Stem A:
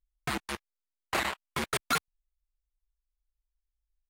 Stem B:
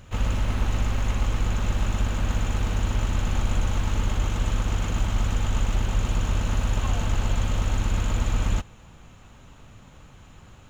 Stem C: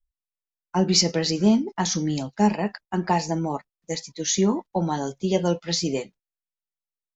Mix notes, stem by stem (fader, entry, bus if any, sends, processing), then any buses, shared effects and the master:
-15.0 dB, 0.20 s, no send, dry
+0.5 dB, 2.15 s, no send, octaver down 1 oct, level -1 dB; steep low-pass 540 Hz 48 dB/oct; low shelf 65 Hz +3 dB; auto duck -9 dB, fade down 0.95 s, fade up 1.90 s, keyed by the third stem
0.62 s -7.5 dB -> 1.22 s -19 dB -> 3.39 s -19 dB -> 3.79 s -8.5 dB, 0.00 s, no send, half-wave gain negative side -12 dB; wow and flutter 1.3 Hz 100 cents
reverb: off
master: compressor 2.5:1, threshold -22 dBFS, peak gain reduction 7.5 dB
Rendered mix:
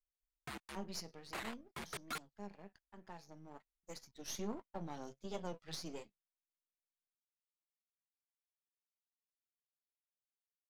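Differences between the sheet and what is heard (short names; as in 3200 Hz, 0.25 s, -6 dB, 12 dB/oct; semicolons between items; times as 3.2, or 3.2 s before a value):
stem B: muted; stem C -7.5 dB -> -16.5 dB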